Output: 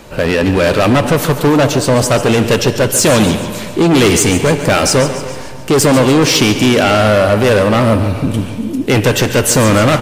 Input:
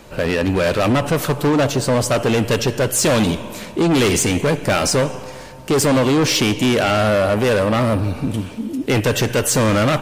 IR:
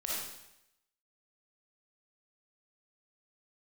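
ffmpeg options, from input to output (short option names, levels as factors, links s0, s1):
-filter_complex "[0:a]aecho=1:1:143|286|429|572|715|858:0.251|0.133|0.0706|0.0374|0.0198|0.0105,asplit=2[s0][s1];[1:a]atrim=start_sample=2205,asetrate=29106,aresample=44100[s2];[s1][s2]afir=irnorm=-1:irlink=0,volume=0.0631[s3];[s0][s3]amix=inputs=2:normalize=0,volume=1.78"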